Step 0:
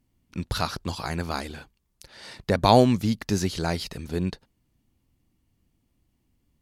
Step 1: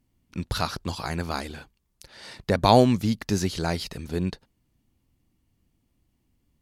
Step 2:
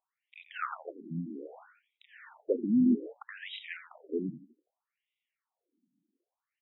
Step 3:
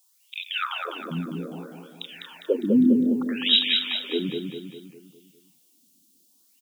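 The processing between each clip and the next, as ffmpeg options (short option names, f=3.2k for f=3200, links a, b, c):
-af anull
-filter_complex "[0:a]asplit=5[a][b][c][d][e];[b]adelay=86,afreqshift=-47,volume=-12dB[f];[c]adelay=172,afreqshift=-94,volume=-19.3dB[g];[d]adelay=258,afreqshift=-141,volume=-26.7dB[h];[e]adelay=344,afreqshift=-188,volume=-34dB[i];[a][f][g][h][i]amix=inputs=5:normalize=0,afftfilt=real='re*between(b*sr/1024,230*pow(2800/230,0.5+0.5*sin(2*PI*0.63*pts/sr))/1.41,230*pow(2800/230,0.5+0.5*sin(2*PI*0.63*pts/sr))*1.41)':imag='im*between(b*sr/1024,230*pow(2800/230,0.5+0.5*sin(2*PI*0.63*pts/sr))/1.41,230*pow(2800/230,0.5+0.5*sin(2*PI*0.63*pts/sr))*1.41)':win_size=1024:overlap=0.75,volume=-1.5dB"
-filter_complex "[0:a]aexciter=amount=15.6:drive=4.7:freq=3k,asplit=2[a][b];[b]aecho=0:1:202|404|606|808|1010|1212:0.596|0.298|0.149|0.0745|0.0372|0.0186[c];[a][c]amix=inputs=2:normalize=0,volume=6dB"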